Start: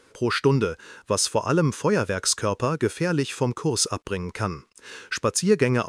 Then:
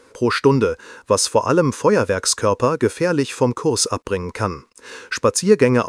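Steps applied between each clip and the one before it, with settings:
thirty-one-band graphic EQ 160 Hz −6 dB, 250 Hz +4 dB, 500 Hz +6 dB, 1,000 Hz +5 dB, 3,150 Hz −4 dB
level +4 dB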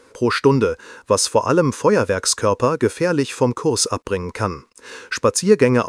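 no processing that can be heard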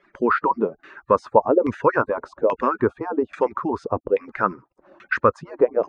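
harmonic-percussive split with one part muted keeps percussive
auto-filter low-pass saw down 1.2 Hz 520–2,300 Hz
level −3 dB

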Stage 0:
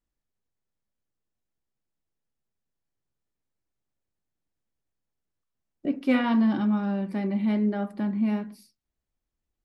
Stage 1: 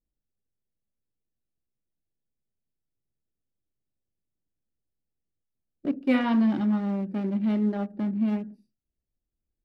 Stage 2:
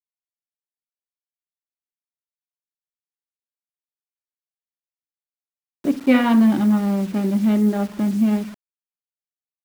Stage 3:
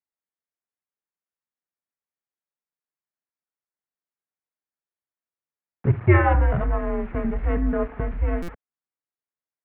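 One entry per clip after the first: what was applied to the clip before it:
adaptive Wiener filter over 41 samples
bit reduction 8 bits; level +7.5 dB
single-sideband voice off tune −160 Hz 270–2,300 Hz; buffer that repeats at 0:08.42, samples 256, times 10; level +3 dB

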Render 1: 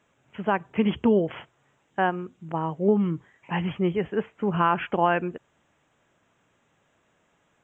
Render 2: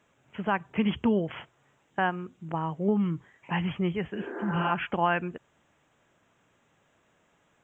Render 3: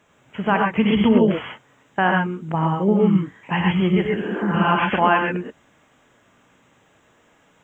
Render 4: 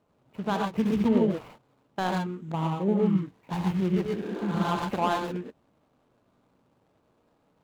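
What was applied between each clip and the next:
healed spectral selection 0:04.17–0:04.68, 220–2,200 Hz both; dynamic equaliser 440 Hz, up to −7 dB, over −35 dBFS, Q 0.78
reverb whose tail is shaped and stops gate 150 ms rising, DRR 0 dB; level +7 dB
running median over 25 samples; level −7 dB

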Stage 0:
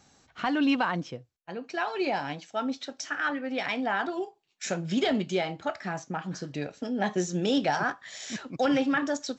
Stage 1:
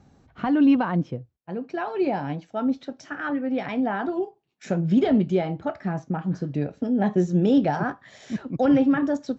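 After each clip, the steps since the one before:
high-pass filter 110 Hz 6 dB per octave
spectral tilt −4.5 dB per octave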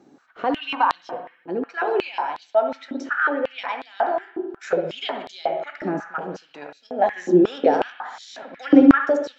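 convolution reverb RT60 0.95 s, pre-delay 61 ms, DRR 5 dB
high-pass on a step sequencer 5.5 Hz 320–4,100 Hz
level +1 dB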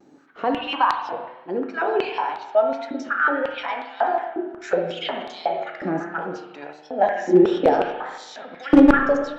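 wavefolder on the positive side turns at −6.5 dBFS
spring reverb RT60 1.1 s, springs 30/41 ms, chirp 70 ms, DRR 6.5 dB
pitch vibrato 1.5 Hz 60 cents

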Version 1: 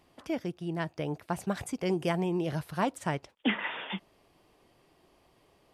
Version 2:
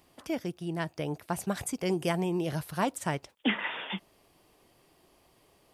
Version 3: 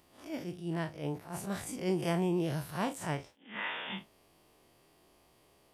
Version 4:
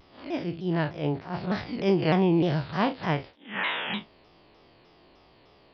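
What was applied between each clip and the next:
high-shelf EQ 6,600 Hz +10.5 dB
spectrum smeared in time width 81 ms; level that may rise only so fast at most 150 dB per second
downsampling to 11,025 Hz; pitch modulation by a square or saw wave saw down 3.3 Hz, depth 160 cents; level +8.5 dB

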